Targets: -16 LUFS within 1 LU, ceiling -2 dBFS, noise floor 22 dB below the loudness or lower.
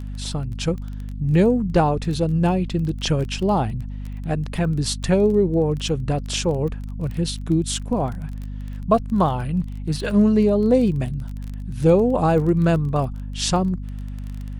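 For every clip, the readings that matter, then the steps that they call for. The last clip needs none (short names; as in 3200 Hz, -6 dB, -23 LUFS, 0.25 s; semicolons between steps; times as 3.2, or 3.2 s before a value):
ticks 19/s; hum 50 Hz; harmonics up to 250 Hz; hum level -28 dBFS; loudness -21.5 LUFS; peak -5.0 dBFS; loudness target -16.0 LUFS
-> de-click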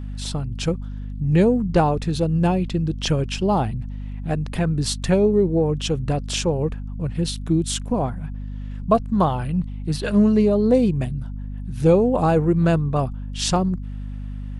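ticks 0.069/s; hum 50 Hz; harmonics up to 250 Hz; hum level -28 dBFS
-> de-hum 50 Hz, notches 5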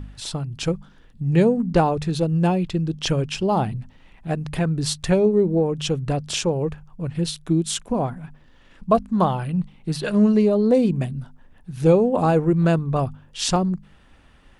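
hum none; loudness -21.5 LUFS; peak -5.0 dBFS; loudness target -16.0 LUFS
-> gain +5.5 dB; limiter -2 dBFS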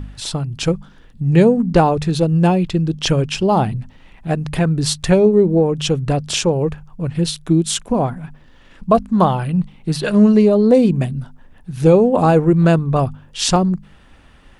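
loudness -16.5 LUFS; peak -2.0 dBFS; noise floor -46 dBFS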